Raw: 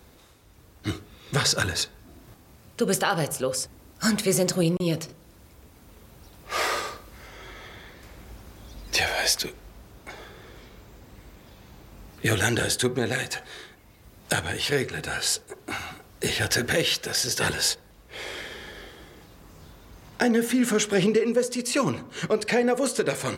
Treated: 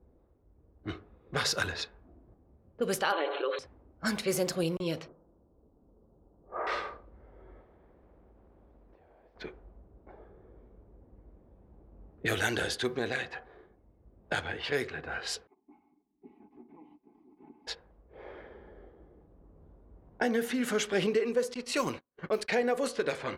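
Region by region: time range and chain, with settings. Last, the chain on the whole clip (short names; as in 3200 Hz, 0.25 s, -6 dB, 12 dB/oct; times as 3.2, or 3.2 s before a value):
3.12–3.59 brick-wall FIR band-pass 290–4300 Hz + comb 7 ms, depth 62% + fast leveller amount 70%
5.08–6.67 LPF 1300 Hz 24 dB/oct + bell 66 Hz -9 dB 1.4 oct
7.61–9.36 Gaussian blur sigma 1.9 samples + compressor 12:1, threshold -41 dBFS + spectral compressor 2:1
15.47–17.67 minimum comb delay 4.6 ms + vowel filter u + notch comb 460 Hz
21.54–22.55 G.711 law mismatch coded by A + gate -37 dBFS, range -33 dB + high shelf 6600 Hz +10.5 dB
whole clip: low-pass opened by the level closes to 420 Hz, open at -19 dBFS; graphic EQ 125/250/8000 Hz -8/-3/-7 dB; gain -4.5 dB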